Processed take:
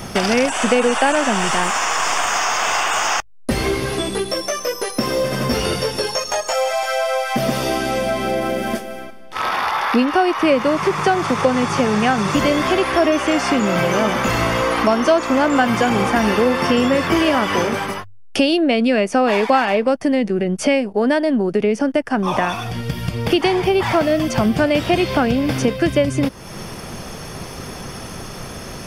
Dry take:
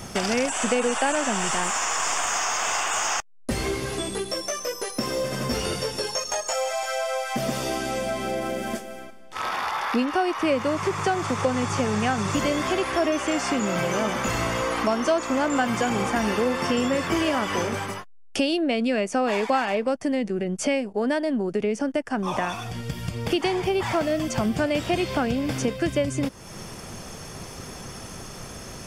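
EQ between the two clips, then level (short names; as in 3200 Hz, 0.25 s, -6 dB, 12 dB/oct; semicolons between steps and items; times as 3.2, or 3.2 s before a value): bell 7400 Hz -8.5 dB 0.49 oct; notches 50/100 Hz; +7.5 dB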